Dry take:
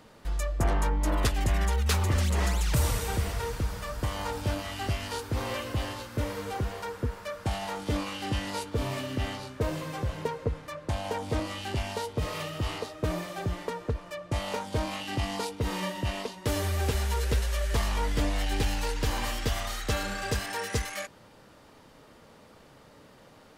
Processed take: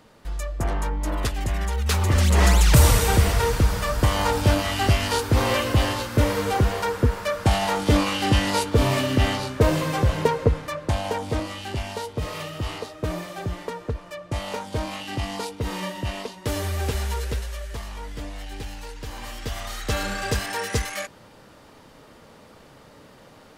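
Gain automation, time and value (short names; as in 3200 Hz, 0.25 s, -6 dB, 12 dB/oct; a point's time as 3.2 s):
1.69 s +0.5 dB
2.51 s +11 dB
10.43 s +11 dB
11.56 s +2 dB
17.09 s +2 dB
17.81 s -7 dB
19.07 s -7 dB
20.04 s +5 dB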